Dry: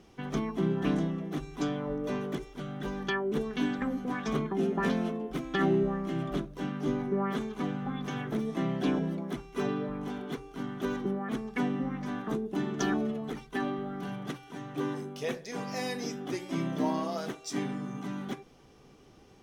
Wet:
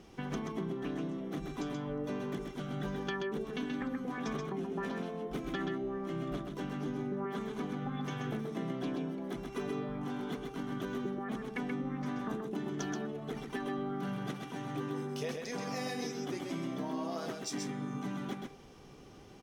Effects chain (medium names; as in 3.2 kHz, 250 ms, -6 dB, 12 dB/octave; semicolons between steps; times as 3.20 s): compression, threshold -37 dBFS, peak gain reduction 14.5 dB; delay 130 ms -4.5 dB; trim +1.5 dB